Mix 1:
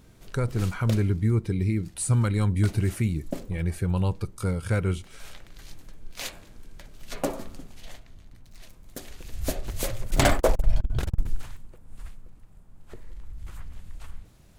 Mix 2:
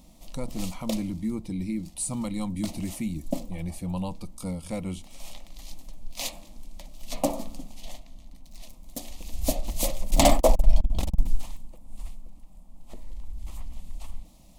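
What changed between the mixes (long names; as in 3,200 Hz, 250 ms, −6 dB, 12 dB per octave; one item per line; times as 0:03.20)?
background +4.5 dB
master: add phaser with its sweep stopped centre 410 Hz, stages 6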